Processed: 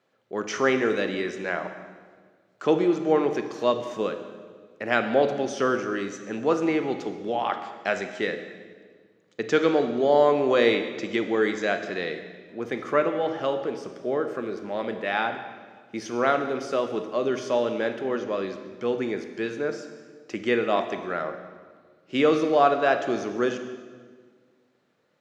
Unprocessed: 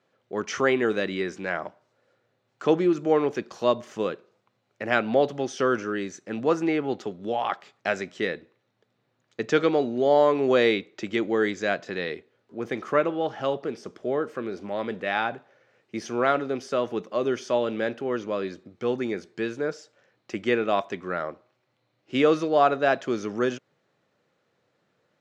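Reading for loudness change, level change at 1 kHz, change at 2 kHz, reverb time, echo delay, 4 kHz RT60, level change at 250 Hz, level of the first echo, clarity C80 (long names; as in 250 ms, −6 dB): +0.5 dB, +1.0 dB, +0.5 dB, 1.7 s, no echo audible, 1.4 s, +0.5 dB, no echo audible, 10.0 dB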